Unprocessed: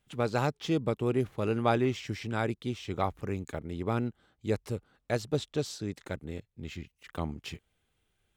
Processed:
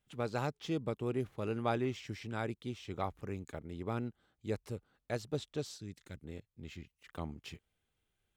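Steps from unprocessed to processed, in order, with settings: 5.77–6.24 s: peaking EQ 730 Hz -12 dB 2.4 oct; trim -7 dB

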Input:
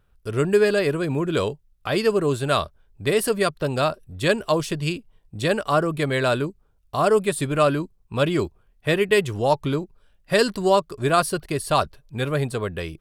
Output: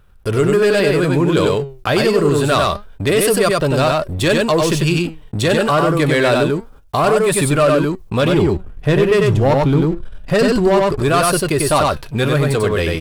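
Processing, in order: 8.32–11.00 s: tilt EQ -2 dB/octave; gate -51 dBFS, range -21 dB; waveshaping leveller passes 2; flange 0.27 Hz, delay 0.7 ms, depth 7.7 ms, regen +80%; delay 95 ms -3.5 dB; level flattener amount 50%; trim +1 dB

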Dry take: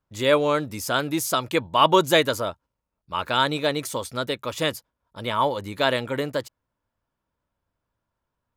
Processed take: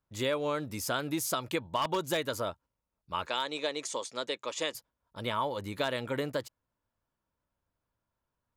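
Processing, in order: 3.26–4.75 s: cabinet simulation 380–8200 Hz, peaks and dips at 700 Hz -3 dB, 1.4 kHz -6 dB, 6.8 kHz +6 dB; wavefolder -9 dBFS; compression 6:1, threshold -23 dBFS, peak gain reduction 10 dB; trim -4.5 dB

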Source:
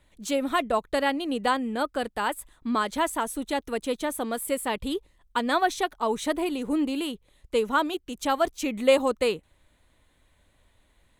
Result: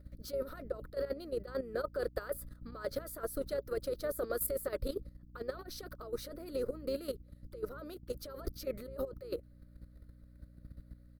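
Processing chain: compressor with a negative ratio -29 dBFS, ratio -0.5; FFT filter 120 Hz 0 dB, 170 Hz -24 dB, 390 Hz -8 dB, 560 Hz +4 dB, 900 Hz -28 dB, 1.3 kHz -1 dB, 3.2 kHz -25 dB, 4.7 kHz 0 dB, 7.2 kHz -22 dB, 14 kHz +3 dB; hum 60 Hz, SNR 11 dB; harmony voices -5 st -13 dB; level held to a coarse grid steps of 12 dB; trim +2.5 dB

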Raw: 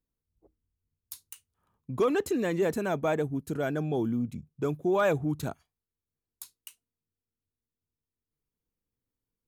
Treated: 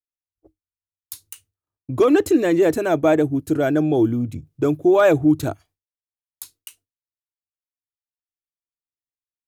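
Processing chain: expander -57 dBFS; graphic EQ with 31 bands 100 Hz +8 dB, 200 Hz -12 dB, 315 Hz +10 dB, 630 Hz +4 dB, 1 kHz -3 dB; trim +8 dB

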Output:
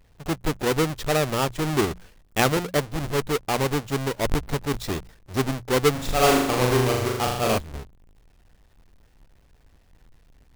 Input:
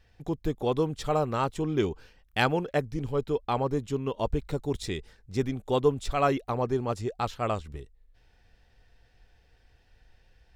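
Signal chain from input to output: square wave that keeps the level; hum notches 60/120/180 Hz; 5.91–7.58 s: flutter echo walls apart 6.9 m, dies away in 0.86 s

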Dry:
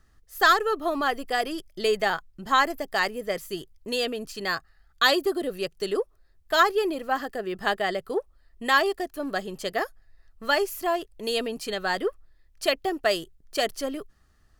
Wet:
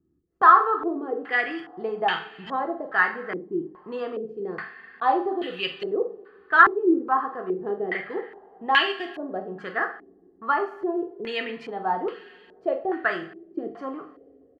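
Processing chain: high-pass 130 Hz 12 dB/octave; peaking EQ 590 Hz -14.5 dB 0.29 oct; hum notches 50/100/150/200 Hz; doubling 45 ms -12.5 dB; two-slope reverb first 0.42 s, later 3.2 s, from -22 dB, DRR 4.5 dB; step-sequenced low-pass 2.4 Hz 330–2800 Hz; trim -2.5 dB

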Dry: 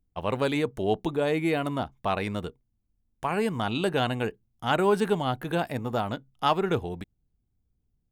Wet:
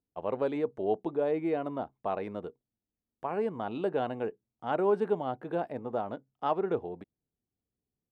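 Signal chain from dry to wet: band-pass filter 500 Hz, Q 0.97; trim -2 dB

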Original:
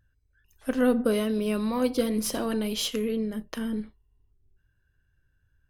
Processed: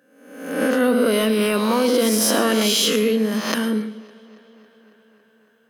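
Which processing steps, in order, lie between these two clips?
reverse spectral sustain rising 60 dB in 0.82 s; steep high-pass 180 Hz 36 dB/octave; bass shelf 470 Hz -5 dB; in parallel at -0.5 dB: compressor with a negative ratio -30 dBFS, ratio -0.5; on the sum: tape echo 277 ms, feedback 77%, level -23 dB, low-pass 5.8 kHz; on a send at -12.5 dB: reverberation RT60 0.45 s, pre-delay 98 ms; on the sum: trim +5 dB

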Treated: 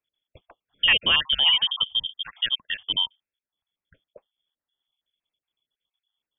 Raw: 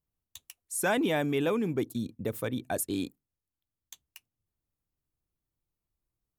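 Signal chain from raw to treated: random holes in the spectrogram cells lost 37%; frequency inversion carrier 3.4 kHz; tape noise reduction on one side only decoder only; trim +9 dB

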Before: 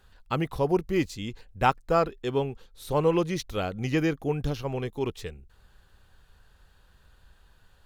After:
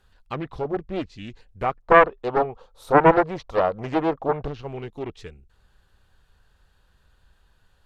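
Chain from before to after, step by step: low-pass that closes with the level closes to 2.4 kHz, closed at -23 dBFS; 1.82–4.48 s: high-order bell 780 Hz +14.5 dB; loudspeaker Doppler distortion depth 0.64 ms; trim -2.5 dB

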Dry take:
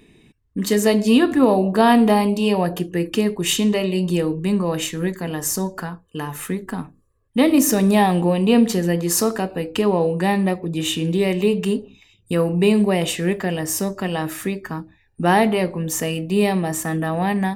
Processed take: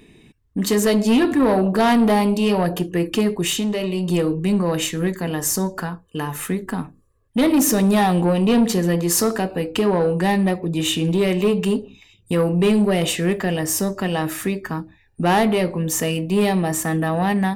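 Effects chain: saturation -13.5 dBFS, distortion -13 dB; 3.43–4.08 s: compression 3:1, threshold -23 dBFS, peak gain reduction 5 dB; trim +2.5 dB

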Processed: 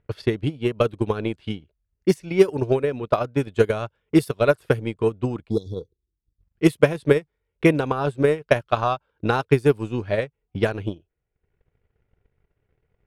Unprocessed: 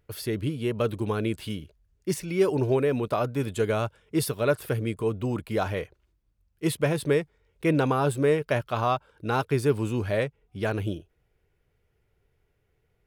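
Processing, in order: spectral selection erased 5.50–6.41 s, 500–3300 Hz; transient shaper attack +12 dB, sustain -10 dB; level-controlled noise filter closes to 2.6 kHz, open at -12.5 dBFS; trim -1 dB

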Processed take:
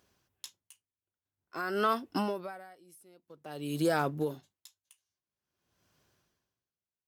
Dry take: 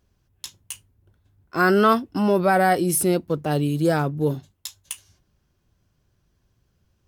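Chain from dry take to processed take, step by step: high-pass 510 Hz 6 dB/octave; compression 6:1, threshold -28 dBFS, peak gain reduction 13.5 dB; logarithmic tremolo 0.5 Hz, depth 32 dB; trim +4.5 dB

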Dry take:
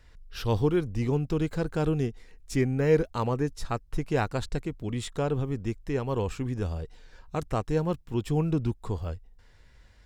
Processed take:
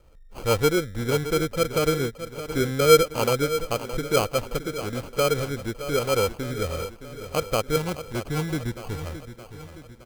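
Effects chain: peaking EQ 530 Hz +13.5 dB 0.61 oct, from 7.76 s 1.7 kHz; sample-and-hold 24×; feedback delay 618 ms, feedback 54%, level -12 dB; trim -1.5 dB

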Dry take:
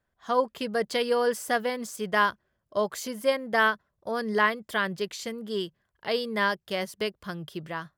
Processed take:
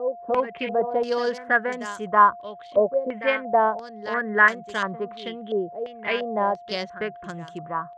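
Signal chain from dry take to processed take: local Wiener filter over 9 samples; whistle 700 Hz -43 dBFS; reverse echo 323 ms -11.5 dB; step-sequenced low-pass 2.9 Hz 550–7100 Hz

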